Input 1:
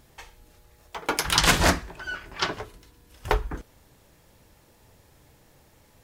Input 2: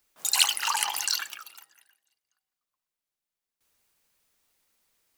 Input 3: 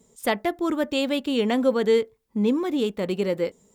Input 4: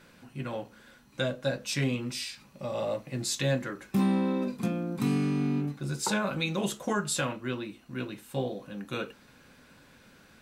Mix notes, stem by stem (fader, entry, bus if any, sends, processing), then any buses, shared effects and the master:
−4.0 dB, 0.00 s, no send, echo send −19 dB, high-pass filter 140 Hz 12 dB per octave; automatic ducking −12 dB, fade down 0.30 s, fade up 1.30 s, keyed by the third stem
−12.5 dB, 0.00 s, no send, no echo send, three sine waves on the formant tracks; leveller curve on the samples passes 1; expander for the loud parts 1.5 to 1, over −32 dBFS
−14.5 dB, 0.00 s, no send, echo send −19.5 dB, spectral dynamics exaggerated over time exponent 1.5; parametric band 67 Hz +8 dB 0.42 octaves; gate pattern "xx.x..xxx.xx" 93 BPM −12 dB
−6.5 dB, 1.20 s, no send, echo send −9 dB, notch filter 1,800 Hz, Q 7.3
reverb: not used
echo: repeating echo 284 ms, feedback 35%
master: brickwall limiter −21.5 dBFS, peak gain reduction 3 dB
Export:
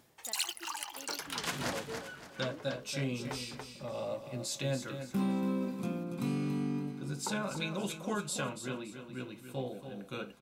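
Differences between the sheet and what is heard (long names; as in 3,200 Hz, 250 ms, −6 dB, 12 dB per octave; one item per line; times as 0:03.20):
stem 2: missing three sine waves on the formant tracks
stem 3 −14.5 dB → −24.0 dB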